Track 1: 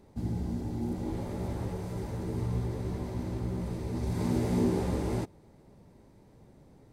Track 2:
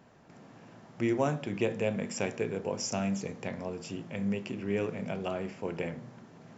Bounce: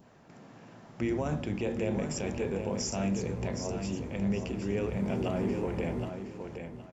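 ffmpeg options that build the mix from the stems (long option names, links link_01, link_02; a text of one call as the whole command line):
ffmpeg -i stem1.wav -i stem2.wav -filter_complex "[0:a]highshelf=frequency=2900:width_type=q:width=1.5:gain=-11,adelay=850,volume=-6.5dB,asplit=2[link_01][link_02];[link_02]volume=-12dB[link_03];[1:a]alimiter=limit=-23.5dB:level=0:latency=1:release=23,volume=1dB,asplit=2[link_04][link_05];[link_05]volume=-7dB[link_06];[link_03][link_06]amix=inputs=2:normalize=0,aecho=0:1:768|1536|2304|3072:1|0.23|0.0529|0.0122[link_07];[link_01][link_04][link_07]amix=inputs=3:normalize=0,adynamicequalizer=threshold=0.00251:dfrequency=1800:dqfactor=0.76:tfrequency=1800:tqfactor=0.76:attack=5:release=100:ratio=0.375:range=1.5:mode=cutabove:tftype=bell,acompressor=mode=upward:threshold=-57dB:ratio=2.5" out.wav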